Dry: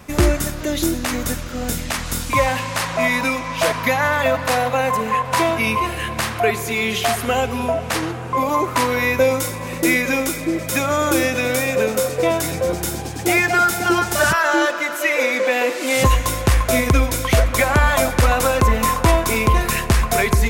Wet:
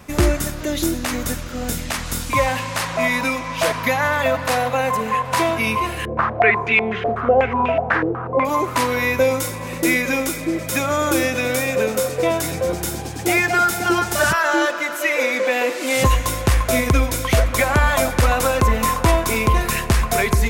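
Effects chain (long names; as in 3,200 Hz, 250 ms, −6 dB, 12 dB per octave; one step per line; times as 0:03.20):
0:06.05–0:08.45: low-pass on a step sequencer 8.1 Hz 480–2,600 Hz
level −1 dB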